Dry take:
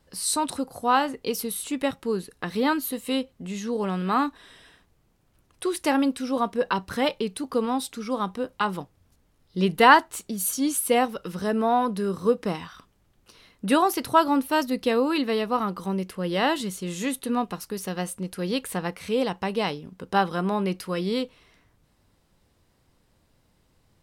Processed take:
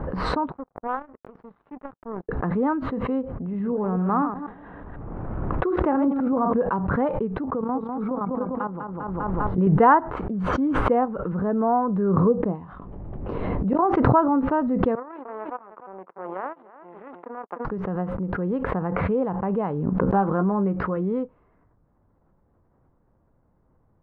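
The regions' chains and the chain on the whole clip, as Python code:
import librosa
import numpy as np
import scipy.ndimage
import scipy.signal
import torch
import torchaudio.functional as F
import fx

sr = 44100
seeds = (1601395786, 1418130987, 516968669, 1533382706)

y = fx.chain(x, sr, fx.lowpass(hz=6800.0, slope=12),
    fx.power_curve(exponent=3.0), at=(0.52, 2.29))
y = fx.chain(y, sr, fx.reverse_delay(ms=124, wet_db=-8.0),
    fx.echo_bbd(ms=182, stages=1024, feedback_pct=32, wet_db=-22),
    fx.sustainer(db_per_s=110.0), at=(3.35, 6.53))
y = fx.chain(y, sr, fx.level_steps(step_db=13),
    fx.echo_feedback(ms=199, feedback_pct=31, wet_db=-6.0), at=(7.55, 9.67))
y = fx.chain(y, sr, fx.peak_eq(hz=1400.0, db=-11.0, octaves=1.0),
    fx.auto_swell(attack_ms=754.0),
    fx.doubler(ms=21.0, db=-13), at=(12.28, 13.79))
y = fx.chain(y, sr, fx.power_curve(exponent=3.0),
    fx.bandpass_edges(low_hz=410.0, high_hz=2700.0),
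    fx.echo_single(ms=301, db=-20.0), at=(14.95, 17.65))
y = fx.chain(y, sr, fx.clip_hard(threshold_db=-15.5),
    fx.doubler(ms=15.0, db=-9.5), at=(20.01, 20.97))
y = scipy.signal.sosfilt(scipy.signal.butter(4, 1300.0, 'lowpass', fs=sr, output='sos'), y)
y = fx.dynamic_eq(y, sr, hz=140.0, q=1.5, threshold_db=-41.0, ratio=4.0, max_db=4)
y = fx.pre_swell(y, sr, db_per_s=21.0)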